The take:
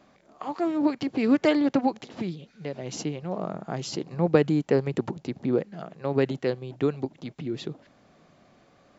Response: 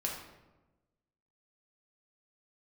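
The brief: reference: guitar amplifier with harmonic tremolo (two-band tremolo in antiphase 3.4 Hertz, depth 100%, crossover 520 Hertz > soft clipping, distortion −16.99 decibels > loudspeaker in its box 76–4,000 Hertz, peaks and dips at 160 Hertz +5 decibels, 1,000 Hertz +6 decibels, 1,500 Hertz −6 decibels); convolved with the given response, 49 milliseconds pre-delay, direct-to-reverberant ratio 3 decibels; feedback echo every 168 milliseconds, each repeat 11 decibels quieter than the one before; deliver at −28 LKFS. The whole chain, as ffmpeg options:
-filter_complex "[0:a]aecho=1:1:168|336|504:0.282|0.0789|0.0221,asplit=2[link_01][link_02];[1:a]atrim=start_sample=2205,adelay=49[link_03];[link_02][link_03]afir=irnorm=-1:irlink=0,volume=-6dB[link_04];[link_01][link_04]amix=inputs=2:normalize=0,acrossover=split=520[link_05][link_06];[link_05]aeval=exprs='val(0)*(1-1/2+1/2*cos(2*PI*3.4*n/s))':channel_layout=same[link_07];[link_06]aeval=exprs='val(0)*(1-1/2-1/2*cos(2*PI*3.4*n/s))':channel_layout=same[link_08];[link_07][link_08]amix=inputs=2:normalize=0,asoftclip=threshold=-17dB,highpass=76,equalizer=frequency=160:width_type=q:width=4:gain=5,equalizer=frequency=1000:width_type=q:width=4:gain=6,equalizer=frequency=1500:width_type=q:width=4:gain=-6,lowpass=frequency=4000:width=0.5412,lowpass=frequency=4000:width=1.3066,volume=3.5dB"

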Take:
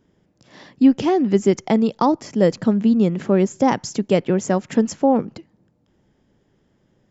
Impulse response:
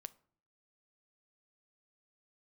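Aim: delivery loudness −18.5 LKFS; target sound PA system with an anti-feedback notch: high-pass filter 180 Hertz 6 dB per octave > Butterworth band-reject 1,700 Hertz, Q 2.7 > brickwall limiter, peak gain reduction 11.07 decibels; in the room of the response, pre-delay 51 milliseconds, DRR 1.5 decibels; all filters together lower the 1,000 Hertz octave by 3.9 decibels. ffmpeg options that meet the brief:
-filter_complex "[0:a]equalizer=frequency=1000:width_type=o:gain=-5,asplit=2[link_01][link_02];[1:a]atrim=start_sample=2205,adelay=51[link_03];[link_02][link_03]afir=irnorm=-1:irlink=0,volume=4dB[link_04];[link_01][link_04]amix=inputs=2:normalize=0,highpass=frequency=180:poles=1,asuperstop=centerf=1700:order=8:qfactor=2.7,volume=5dB,alimiter=limit=-9dB:level=0:latency=1"

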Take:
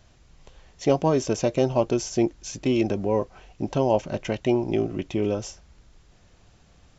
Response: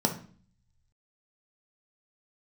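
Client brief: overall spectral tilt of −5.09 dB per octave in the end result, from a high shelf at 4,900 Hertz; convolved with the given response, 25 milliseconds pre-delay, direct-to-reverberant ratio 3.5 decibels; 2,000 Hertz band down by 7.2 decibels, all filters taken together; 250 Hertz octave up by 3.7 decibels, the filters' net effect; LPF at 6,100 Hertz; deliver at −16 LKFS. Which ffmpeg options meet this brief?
-filter_complex "[0:a]lowpass=6100,equalizer=frequency=250:width_type=o:gain=5,equalizer=frequency=2000:width_type=o:gain=-8,highshelf=frequency=4900:gain=-8,asplit=2[link_01][link_02];[1:a]atrim=start_sample=2205,adelay=25[link_03];[link_02][link_03]afir=irnorm=-1:irlink=0,volume=-13dB[link_04];[link_01][link_04]amix=inputs=2:normalize=0,volume=2dB"

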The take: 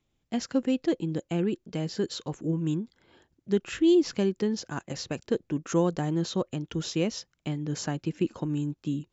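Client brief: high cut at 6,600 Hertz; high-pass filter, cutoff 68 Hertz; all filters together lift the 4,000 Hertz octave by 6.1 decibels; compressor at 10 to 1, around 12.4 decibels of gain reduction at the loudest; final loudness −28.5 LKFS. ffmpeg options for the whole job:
ffmpeg -i in.wav -af "highpass=68,lowpass=6600,equalizer=frequency=4000:width_type=o:gain=8.5,acompressor=threshold=-30dB:ratio=10,volume=7dB" out.wav

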